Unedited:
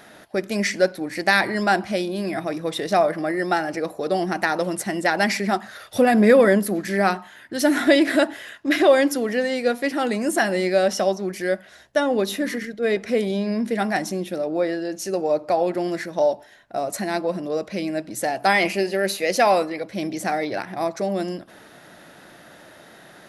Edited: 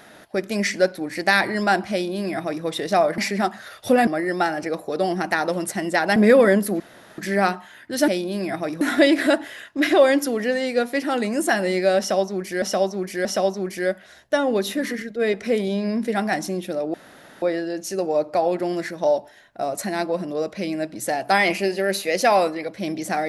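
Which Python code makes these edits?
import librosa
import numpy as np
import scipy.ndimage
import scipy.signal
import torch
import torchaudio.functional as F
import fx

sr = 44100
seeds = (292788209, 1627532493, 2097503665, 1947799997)

y = fx.edit(x, sr, fx.duplicate(start_s=1.92, length_s=0.73, to_s=7.7),
    fx.move(start_s=5.27, length_s=0.89, to_s=3.18),
    fx.insert_room_tone(at_s=6.8, length_s=0.38),
    fx.repeat(start_s=10.88, length_s=0.63, count=3),
    fx.insert_room_tone(at_s=14.57, length_s=0.48), tone=tone)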